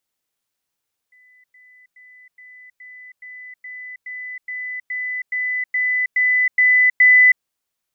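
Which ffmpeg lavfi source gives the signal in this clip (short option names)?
-f lavfi -i "aevalsrc='pow(10,(-49.5+3*floor(t/0.42))/20)*sin(2*PI*2000*t)*clip(min(mod(t,0.42),0.32-mod(t,0.42))/0.005,0,1)':d=6.3:s=44100"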